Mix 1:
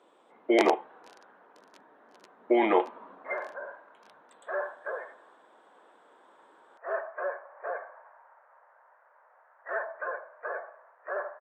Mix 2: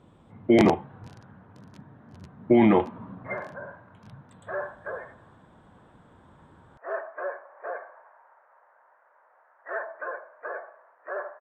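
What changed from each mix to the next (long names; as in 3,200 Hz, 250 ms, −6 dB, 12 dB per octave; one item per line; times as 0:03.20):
master: remove high-pass filter 380 Hz 24 dB per octave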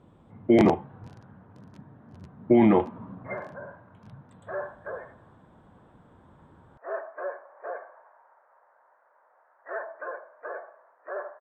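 speech: add high-shelf EQ 3,100 Hz +5 dB
master: add high-shelf EQ 2,200 Hz −11 dB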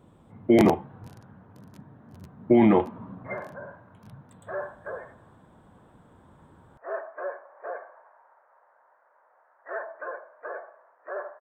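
speech: send on
master: remove high-frequency loss of the air 74 metres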